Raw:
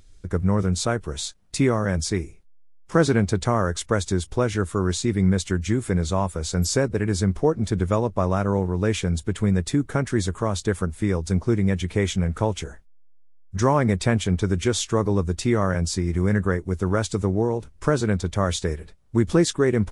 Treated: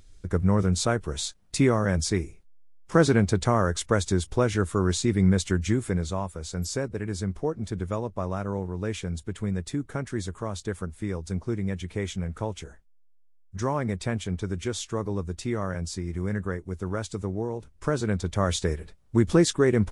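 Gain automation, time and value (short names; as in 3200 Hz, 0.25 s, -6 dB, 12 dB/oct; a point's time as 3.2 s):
5.67 s -1 dB
6.28 s -8 dB
17.47 s -8 dB
18.62 s -1 dB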